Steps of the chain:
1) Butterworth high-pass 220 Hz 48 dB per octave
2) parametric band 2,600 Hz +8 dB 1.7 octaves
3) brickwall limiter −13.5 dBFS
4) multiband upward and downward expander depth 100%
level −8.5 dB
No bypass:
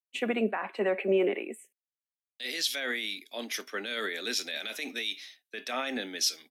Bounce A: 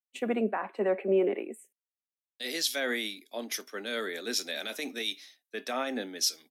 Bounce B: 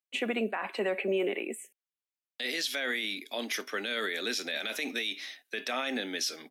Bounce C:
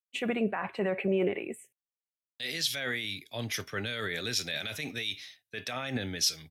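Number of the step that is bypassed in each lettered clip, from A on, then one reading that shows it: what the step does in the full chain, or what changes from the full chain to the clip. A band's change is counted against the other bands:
2, 2 kHz band −2.5 dB
4, 2 kHz band +3.0 dB
1, 500 Hz band −2.0 dB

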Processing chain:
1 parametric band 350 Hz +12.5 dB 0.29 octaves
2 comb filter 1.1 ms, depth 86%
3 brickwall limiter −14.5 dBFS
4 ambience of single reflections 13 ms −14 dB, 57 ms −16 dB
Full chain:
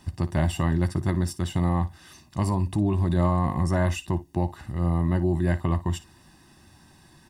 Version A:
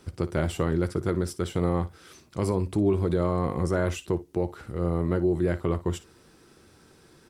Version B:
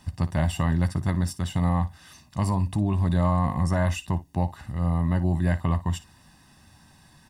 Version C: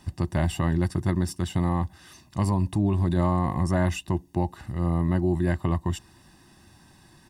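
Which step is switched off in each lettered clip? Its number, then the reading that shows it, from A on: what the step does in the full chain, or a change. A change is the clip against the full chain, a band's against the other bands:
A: 2, 500 Hz band +6.5 dB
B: 1, 500 Hz band −3.0 dB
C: 4, echo-to-direct ratio −12.0 dB to none audible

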